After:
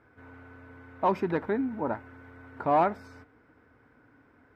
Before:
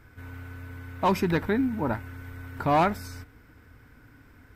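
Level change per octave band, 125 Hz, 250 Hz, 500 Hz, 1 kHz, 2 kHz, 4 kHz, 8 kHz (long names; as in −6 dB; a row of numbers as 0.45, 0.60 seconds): −9.5 dB, −4.5 dB, −0.5 dB, −1.0 dB, −6.0 dB, below −10 dB, below −15 dB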